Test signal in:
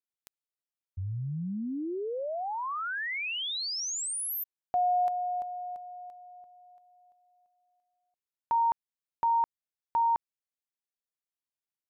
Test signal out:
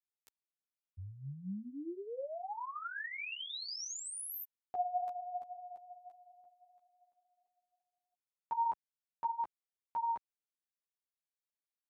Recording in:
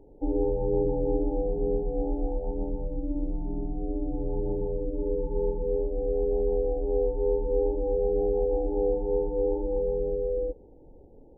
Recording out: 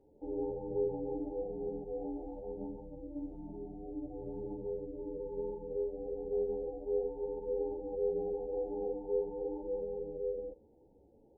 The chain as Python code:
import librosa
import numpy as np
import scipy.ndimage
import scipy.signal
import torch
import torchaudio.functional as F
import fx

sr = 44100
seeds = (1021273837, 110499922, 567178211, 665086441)

y = fx.highpass(x, sr, hz=100.0, slope=6)
y = fx.ensemble(y, sr)
y = y * librosa.db_to_amplitude(-6.0)